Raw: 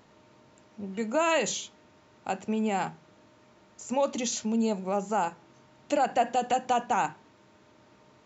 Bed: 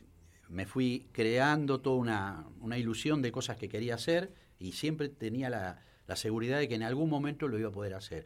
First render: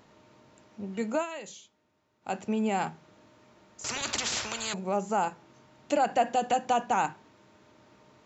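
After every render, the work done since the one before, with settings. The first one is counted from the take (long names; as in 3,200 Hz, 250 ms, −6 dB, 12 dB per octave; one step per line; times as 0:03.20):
0:01.14–0:02.34: duck −14.5 dB, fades 0.13 s
0:03.84–0:04.74: every bin compressed towards the loudest bin 10 to 1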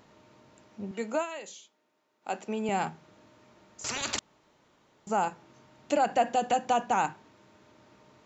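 0:00.91–0:02.69: high-pass filter 280 Hz
0:04.19–0:05.07: fill with room tone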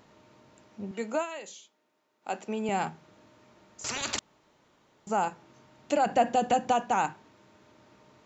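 0:06.06–0:06.72: low-shelf EQ 340 Hz +7 dB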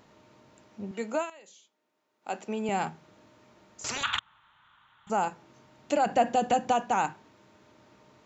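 0:01.30–0:02.43: fade in, from −13 dB
0:04.03–0:05.10: drawn EQ curve 110 Hz 0 dB, 330 Hz −18 dB, 540 Hz −19 dB, 880 Hz +3 dB, 1,400 Hz +12 dB, 2,200 Hz +2 dB, 3,500 Hz +9 dB, 5,000 Hz −23 dB, 7,200 Hz −13 dB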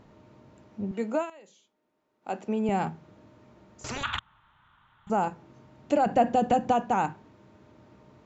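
spectral tilt −2.5 dB per octave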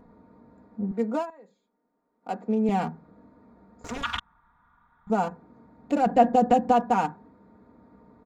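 adaptive Wiener filter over 15 samples
comb filter 4.2 ms, depth 71%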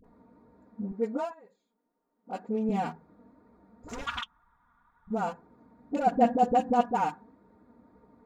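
all-pass dispersion highs, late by 44 ms, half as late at 530 Hz
flanger 2 Hz, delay 1.8 ms, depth 2.9 ms, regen +55%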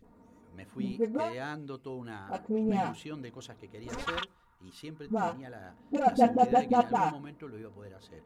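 mix in bed −10.5 dB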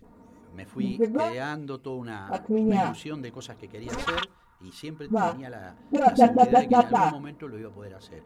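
level +6 dB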